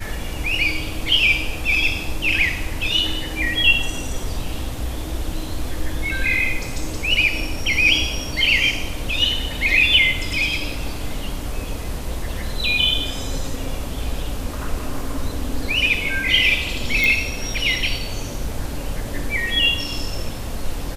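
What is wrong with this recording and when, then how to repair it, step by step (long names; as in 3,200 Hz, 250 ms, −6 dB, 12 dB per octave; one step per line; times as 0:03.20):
0:17.04: click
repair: click removal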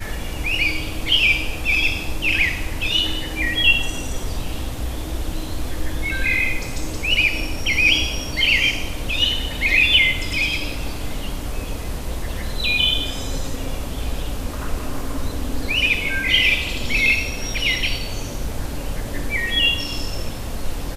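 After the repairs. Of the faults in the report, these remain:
none of them is left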